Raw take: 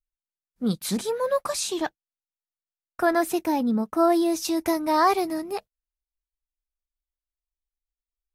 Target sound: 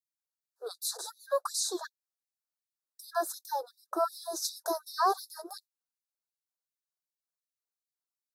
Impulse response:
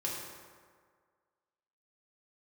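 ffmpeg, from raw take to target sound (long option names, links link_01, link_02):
-af "acompressor=threshold=-31dB:ratio=1.5,asuperstop=centerf=2500:order=12:qfactor=1.2,afftfilt=real='re*gte(b*sr/1024,340*pow(3600/340,0.5+0.5*sin(2*PI*2.7*pts/sr)))':imag='im*gte(b*sr/1024,340*pow(3600/340,0.5+0.5*sin(2*PI*2.7*pts/sr)))':win_size=1024:overlap=0.75"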